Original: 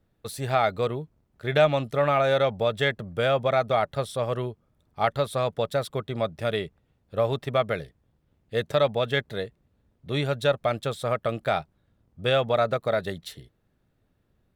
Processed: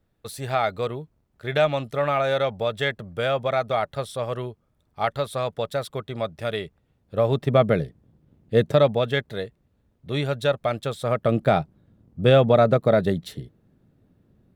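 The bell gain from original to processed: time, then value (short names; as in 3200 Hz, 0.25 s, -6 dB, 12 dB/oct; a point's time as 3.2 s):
bell 200 Hz 3 oct
6.61 s -1.5 dB
7.3 s +6.5 dB
7.6 s +13 dB
8.57 s +13 dB
9.24 s +1.5 dB
10.97 s +1.5 dB
11.37 s +13 dB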